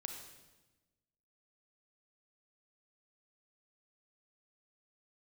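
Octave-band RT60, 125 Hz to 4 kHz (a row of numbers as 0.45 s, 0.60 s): 1.5 s, 1.5 s, 1.2 s, 1.1 s, 1.0 s, 1.0 s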